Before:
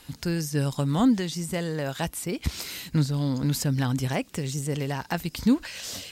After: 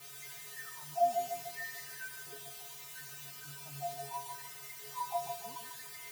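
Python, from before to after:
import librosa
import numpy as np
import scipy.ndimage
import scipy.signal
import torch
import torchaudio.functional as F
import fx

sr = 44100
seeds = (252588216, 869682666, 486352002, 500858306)

p1 = fx.pitch_trill(x, sr, semitones=1.0, every_ms=508)
p2 = scipy.signal.sosfilt(scipy.signal.butter(2, 98.0, 'highpass', fs=sr, output='sos'), p1)
p3 = fx.level_steps(p2, sr, step_db=12)
p4 = p2 + (p3 * librosa.db_to_amplitude(1.0))
p5 = fx.wah_lfo(p4, sr, hz=0.71, low_hz=700.0, high_hz=2100.0, q=8.8)
p6 = fx.spec_topn(p5, sr, count=8)
p7 = fx.quant_dither(p6, sr, seeds[0], bits=8, dither='triangular')
p8 = fx.comb_fb(p7, sr, f0_hz=140.0, decay_s=0.28, harmonics='odd', damping=0.0, mix_pct=100)
p9 = p8 + fx.echo_wet_highpass(p8, sr, ms=85, feedback_pct=54, hz=1400.0, wet_db=-10.5, dry=0)
p10 = fx.echo_crushed(p9, sr, ms=147, feedback_pct=55, bits=11, wet_db=-5)
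y = p10 * librosa.db_to_amplitude(12.0)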